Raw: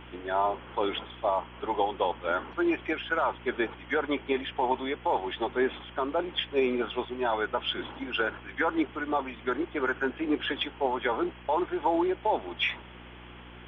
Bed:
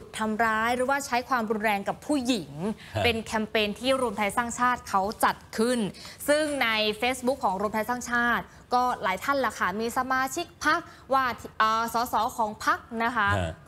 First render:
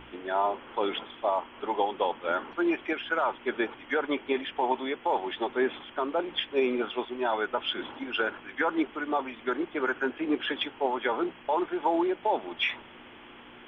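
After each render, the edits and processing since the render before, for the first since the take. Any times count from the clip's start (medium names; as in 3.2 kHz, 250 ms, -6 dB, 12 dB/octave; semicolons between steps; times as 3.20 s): de-hum 60 Hz, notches 3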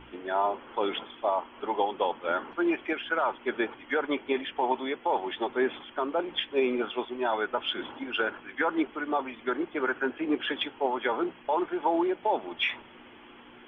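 noise reduction 6 dB, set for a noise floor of -50 dBFS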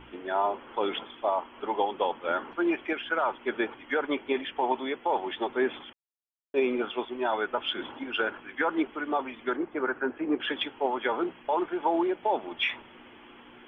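5.93–6.54 s: mute; 9.56–10.40 s: low-pass 1.8 kHz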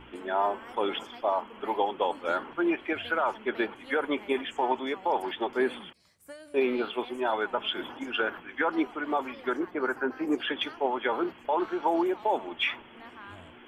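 add bed -23 dB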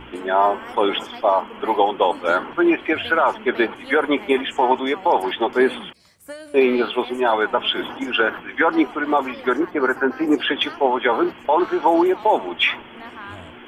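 trim +10 dB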